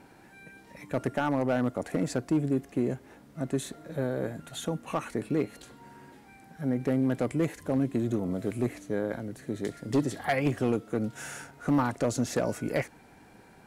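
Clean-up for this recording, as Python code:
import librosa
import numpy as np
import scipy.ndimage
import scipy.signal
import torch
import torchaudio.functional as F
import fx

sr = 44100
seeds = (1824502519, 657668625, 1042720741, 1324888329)

y = fx.fix_declip(x, sr, threshold_db=-19.0)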